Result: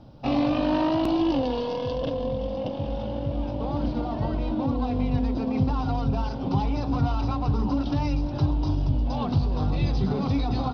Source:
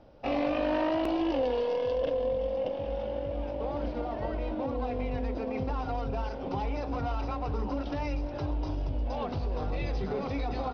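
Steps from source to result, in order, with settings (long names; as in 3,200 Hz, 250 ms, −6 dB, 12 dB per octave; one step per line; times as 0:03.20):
octave-band graphic EQ 125/250/500/1,000/2,000/4,000 Hz +11/+5/−7/+3/−8/+6 dB
level +4.5 dB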